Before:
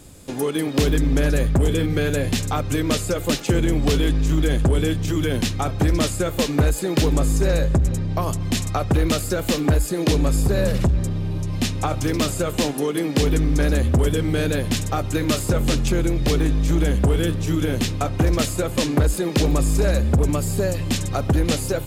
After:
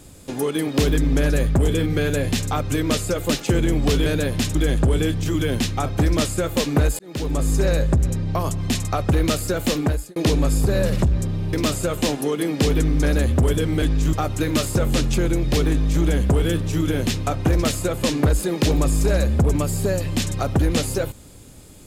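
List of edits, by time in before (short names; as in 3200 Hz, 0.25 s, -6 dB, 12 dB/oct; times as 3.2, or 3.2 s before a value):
4.06–4.37 swap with 14.38–14.87
6.81–7.34 fade in linear
9.6–9.98 fade out
11.35–12.09 cut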